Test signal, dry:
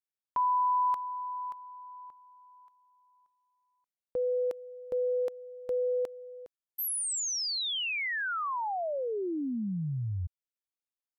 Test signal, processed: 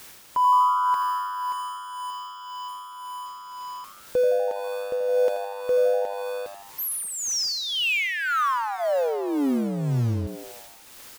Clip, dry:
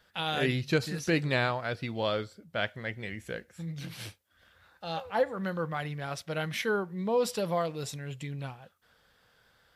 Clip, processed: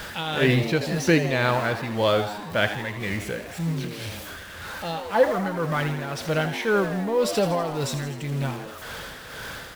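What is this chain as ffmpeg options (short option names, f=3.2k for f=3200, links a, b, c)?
-filter_complex "[0:a]aeval=exprs='val(0)+0.5*0.0126*sgn(val(0))':c=same,highshelf=f=5.4k:g=-7,bandreject=f=730:w=12,acrusher=bits=8:mix=0:aa=0.000001,tremolo=f=1.9:d=0.55,asplit=9[a][b][c][d][e][f][g][h][i];[b]adelay=81,afreqshift=100,volume=-11dB[j];[c]adelay=162,afreqshift=200,volume=-15dB[k];[d]adelay=243,afreqshift=300,volume=-19dB[l];[e]adelay=324,afreqshift=400,volume=-23dB[m];[f]adelay=405,afreqshift=500,volume=-27.1dB[n];[g]adelay=486,afreqshift=600,volume=-31.1dB[o];[h]adelay=567,afreqshift=700,volume=-35.1dB[p];[i]adelay=648,afreqshift=800,volume=-39.1dB[q];[a][j][k][l][m][n][o][p][q]amix=inputs=9:normalize=0,volume=8.5dB"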